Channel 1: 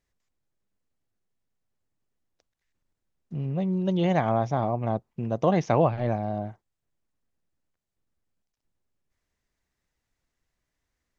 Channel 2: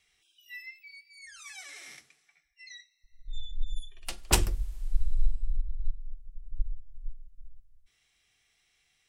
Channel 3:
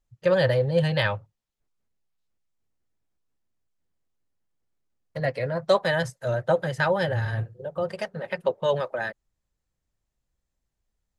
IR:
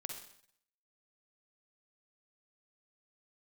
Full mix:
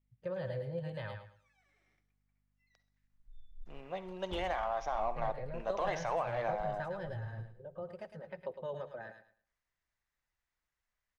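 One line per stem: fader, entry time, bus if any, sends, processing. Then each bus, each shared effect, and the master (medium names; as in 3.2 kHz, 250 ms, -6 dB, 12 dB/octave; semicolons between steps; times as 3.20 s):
0.0 dB, 0.35 s, no bus, send -4 dB, no echo send, high-pass 1.1 kHz 12 dB/octave; peak limiter -27.5 dBFS, peak gain reduction 10 dB; waveshaping leveller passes 1
-18.5 dB, 0.00 s, bus A, no send, echo send -20 dB, hum 50 Hz, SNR 32 dB
-14.0 dB, 0.00 s, bus A, send -19.5 dB, echo send -11.5 dB, treble shelf 3.9 kHz +10.5 dB
bus A: 0.0 dB, low-pass 1.7 kHz 6 dB/octave; compression 2:1, threshold -38 dBFS, peak gain reduction 5.5 dB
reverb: on, RT60 0.65 s, pre-delay 43 ms
echo: feedback delay 107 ms, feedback 24%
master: treble shelf 2.2 kHz -12 dB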